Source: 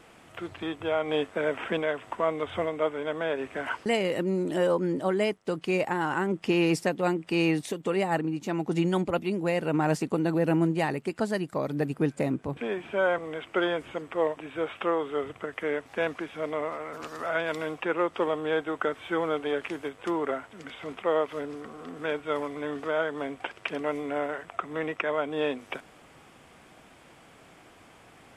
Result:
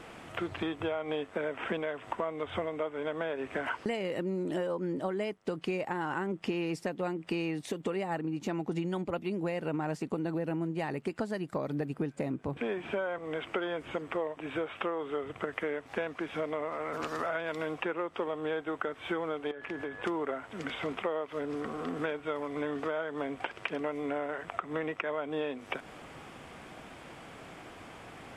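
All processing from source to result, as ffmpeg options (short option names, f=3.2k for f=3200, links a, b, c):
-filter_complex "[0:a]asettb=1/sr,asplit=3[a][b][c];[a]atrim=end=19.514[d];[b]atrim=start=19.51:end=20.03,asetpts=PTS-STARTPTS,afade=t=in:d=0.004:c=qsin,afade=t=out:st=0.516:d=0.004:c=qsin,highshelf=f=4.6k:g=-12,acompressor=threshold=-38dB:ratio=12:attack=3.2:release=140:knee=1:detection=peak,aeval=exprs='val(0)+0.00316*sin(2*PI*1700*n/s)':c=same[e];[c]atrim=start=20.026[f];[d][e]acrossfade=d=0.004:c1=hsin:c2=qsin[g];[g][f]acrossfade=d=0.004:c1=qsin:c2=hsin,acompressor=threshold=-36dB:ratio=10,highshelf=f=5.7k:g=-7,volume=6dB"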